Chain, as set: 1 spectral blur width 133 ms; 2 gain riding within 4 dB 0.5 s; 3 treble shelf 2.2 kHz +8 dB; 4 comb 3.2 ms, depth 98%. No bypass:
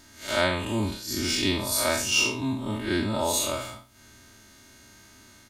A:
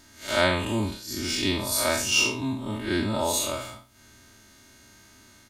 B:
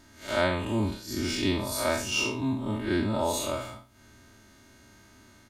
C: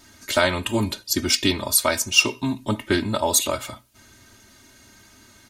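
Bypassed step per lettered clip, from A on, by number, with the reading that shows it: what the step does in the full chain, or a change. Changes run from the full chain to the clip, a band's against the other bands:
2, crest factor change +1.5 dB; 3, 8 kHz band -6.5 dB; 1, 8 kHz band +1.5 dB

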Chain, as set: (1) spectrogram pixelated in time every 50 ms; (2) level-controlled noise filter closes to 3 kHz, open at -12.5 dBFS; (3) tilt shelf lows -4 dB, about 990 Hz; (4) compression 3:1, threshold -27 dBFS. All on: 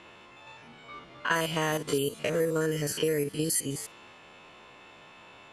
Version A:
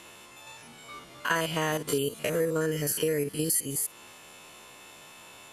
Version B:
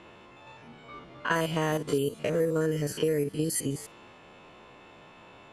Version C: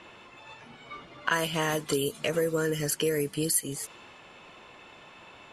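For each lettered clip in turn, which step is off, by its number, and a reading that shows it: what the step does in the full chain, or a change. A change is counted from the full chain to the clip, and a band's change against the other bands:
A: 2, 8 kHz band +3.0 dB; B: 3, momentary loudness spread change -2 LU; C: 1, 8 kHz band +2.0 dB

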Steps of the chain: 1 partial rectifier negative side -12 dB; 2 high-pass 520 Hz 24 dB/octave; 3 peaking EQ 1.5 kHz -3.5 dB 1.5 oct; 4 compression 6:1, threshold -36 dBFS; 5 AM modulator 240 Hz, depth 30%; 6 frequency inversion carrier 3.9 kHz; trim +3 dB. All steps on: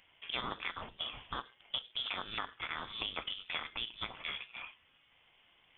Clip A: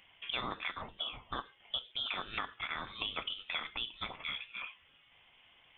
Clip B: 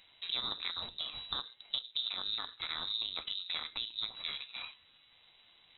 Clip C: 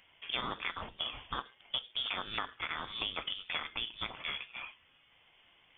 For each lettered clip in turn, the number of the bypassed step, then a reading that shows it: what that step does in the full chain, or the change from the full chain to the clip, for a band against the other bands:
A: 1, distortion -5 dB; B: 2, 4 kHz band +9.5 dB; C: 5, loudness change +2.0 LU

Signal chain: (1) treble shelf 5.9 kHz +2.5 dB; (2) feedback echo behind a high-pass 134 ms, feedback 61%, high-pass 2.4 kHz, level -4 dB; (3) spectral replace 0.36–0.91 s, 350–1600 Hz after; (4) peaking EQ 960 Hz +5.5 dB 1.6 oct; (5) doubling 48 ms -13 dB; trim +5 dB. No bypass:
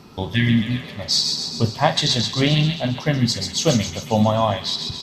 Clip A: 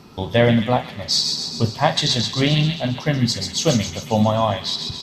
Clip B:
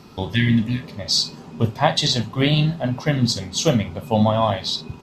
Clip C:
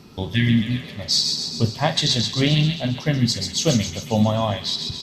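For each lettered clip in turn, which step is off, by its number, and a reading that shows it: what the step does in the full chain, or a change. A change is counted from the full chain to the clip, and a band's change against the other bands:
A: 3, 500 Hz band +2.5 dB; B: 2, momentary loudness spread change +2 LU; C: 4, 1 kHz band -4.5 dB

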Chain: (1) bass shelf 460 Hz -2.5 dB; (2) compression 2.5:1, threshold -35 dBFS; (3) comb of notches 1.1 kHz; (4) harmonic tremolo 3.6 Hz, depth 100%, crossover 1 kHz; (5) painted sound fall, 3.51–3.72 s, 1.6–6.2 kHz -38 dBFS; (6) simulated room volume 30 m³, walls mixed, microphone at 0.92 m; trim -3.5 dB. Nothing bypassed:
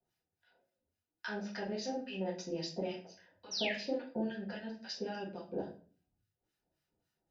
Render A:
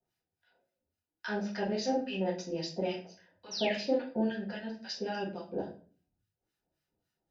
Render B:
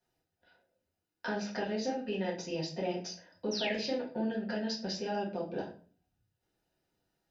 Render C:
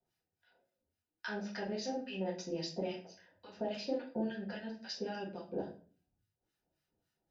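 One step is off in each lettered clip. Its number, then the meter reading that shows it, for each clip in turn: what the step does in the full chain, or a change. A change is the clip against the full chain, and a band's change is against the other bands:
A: 2, mean gain reduction 4.5 dB; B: 4, momentary loudness spread change -5 LU; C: 5, crest factor change -1.5 dB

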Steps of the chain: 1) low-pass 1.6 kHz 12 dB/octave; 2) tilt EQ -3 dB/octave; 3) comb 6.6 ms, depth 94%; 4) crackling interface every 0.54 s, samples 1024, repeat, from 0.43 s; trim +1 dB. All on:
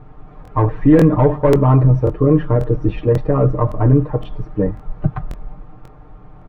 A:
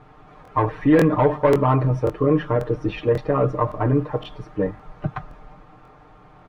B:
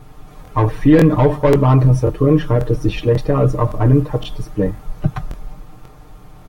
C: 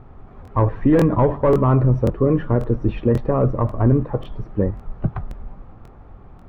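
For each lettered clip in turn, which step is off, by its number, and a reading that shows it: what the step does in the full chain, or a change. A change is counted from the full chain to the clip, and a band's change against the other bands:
2, 125 Hz band -7.0 dB; 1, 2 kHz band +4.0 dB; 3, loudness change -3.5 LU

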